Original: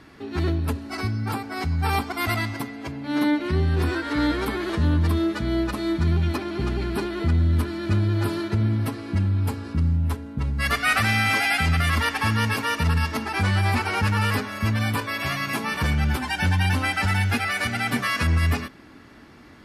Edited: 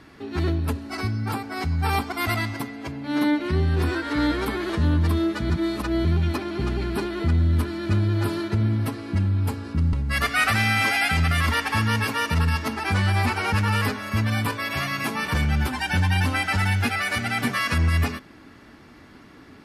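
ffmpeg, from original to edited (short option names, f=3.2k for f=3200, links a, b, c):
-filter_complex "[0:a]asplit=4[a][b][c][d];[a]atrim=end=5.502[e];[b]atrim=start=5.498:end=6.052,asetpts=PTS-STARTPTS,areverse[f];[c]atrim=start=6.048:end=9.932[g];[d]atrim=start=10.418[h];[e][f]acrossfade=d=0.004:c1=hsin:c2=hsin[i];[i][g]acrossfade=d=0.004:c1=hsin:c2=hsin[j];[j][h]acrossfade=d=0.004:c1=hsin:c2=hsin"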